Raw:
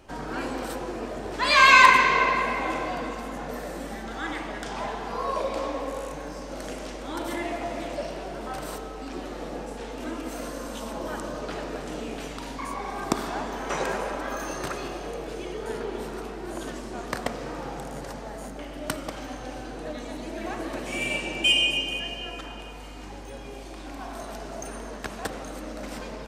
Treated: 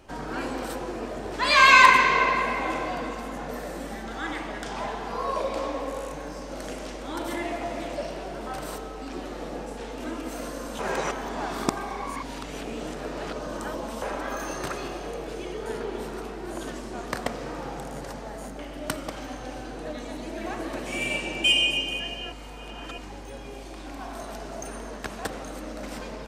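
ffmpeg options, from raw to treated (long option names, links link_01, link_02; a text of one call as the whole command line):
ffmpeg -i in.wav -filter_complex "[0:a]asplit=5[link_01][link_02][link_03][link_04][link_05];[link_01]atrim=end=10.792[link_06];[link_02]atrim=start=10.788:end=14.022,asetpts=PTS-STARTPTS,areverse[link_07];[link_03]atrim=start=14.018:end=22.322[link_08];[link_04]atrim=start=22.318:end=22.982,asetpts=PTS-STARTPTS,areverse[link_09];[link_05]atrim=start=22.978[link_10];[link_06][link_07]acrossfade=duration=0.004:curve1=hsin:curve2=hsin[link_11];[link_11][link_08]acrossfade=duration=0.004:curve1=hsin:curve2=hsin[link_12];[link_12][link_09]acrossfade=duration=0.004:curve1=hsin:curve2=hsin[link_13];[link_13][link_10]acrossfade=duration=0.004:curve1=hsin:curve2=hsin" out.wav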